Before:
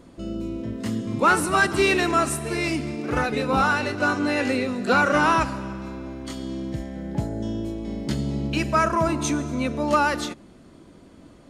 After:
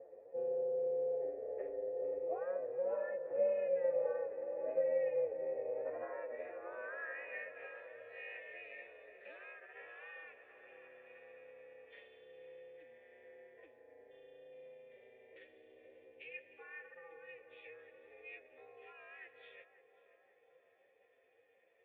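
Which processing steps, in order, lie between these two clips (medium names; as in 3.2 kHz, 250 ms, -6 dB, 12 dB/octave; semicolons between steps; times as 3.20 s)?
compression 6:1, threshold -30 dBFS, peak gain reduction 15.5 dB; time stretch by phase-locked vocoder 1.9×; ring modulator 180 Hz; band-pass sweep 660 Hz -> 3.1 kHz, 5.58–7.90 s; cascade formant filter e; on a send: band-passed feedback delay 537 ms, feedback 73%, band-pass 660 Hz, level -11 dB; on the sum: trim +12 dB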